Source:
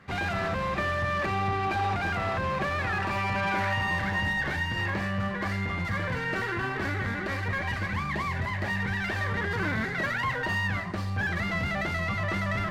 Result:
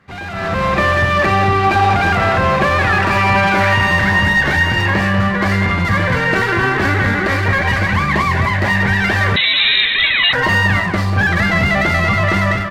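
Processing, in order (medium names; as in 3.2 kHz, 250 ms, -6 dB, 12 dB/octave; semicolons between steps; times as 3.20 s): level rider gain up to 15 dB; speakerphone echo 190 ms, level -6 dB; 9.36–10.33 s: frequency inversion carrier 3.9 kHz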